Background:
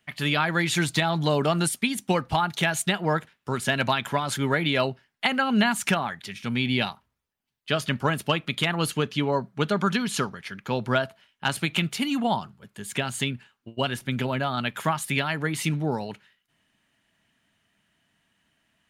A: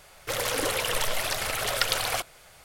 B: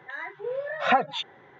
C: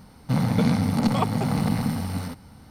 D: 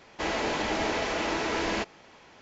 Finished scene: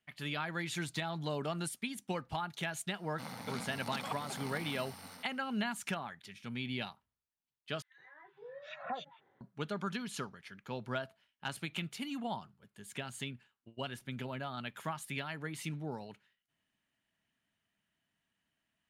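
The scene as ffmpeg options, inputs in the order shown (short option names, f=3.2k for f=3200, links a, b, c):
-filter_complex "[0:a]volume=-14dB[a];[3:a]highpass=f=1.1k:p=1[b];[2:a]acrossover=split=1900[c][d];[c]adelay=160[e];[e][d]amix=inputs=2:normalize=0[f];[a]asplit=2[g][h];[g]atrim=end=7.824[i];[f]atrim=end=1.59,asetpts=PTS-STARTPTS,volume=-18dB[j];[h]atrim=start=9.406[k];[b]atrim=end=2.7,asetpts=PTS-STARTPTS,volume=-10.5dB,afade=t=in:d=0.004:c=hsin,afade=t=out:st=2.696:d=0.004:c=hsin,adelay=2890[l];[i][j]acrossfade=d=0.004:c1=hsin:c2=hsin[m];[m][k]acrossfade=d=0.004:c1=hsin:c2=hsin[n];[n][l]amix=inputs=2:normalize=0"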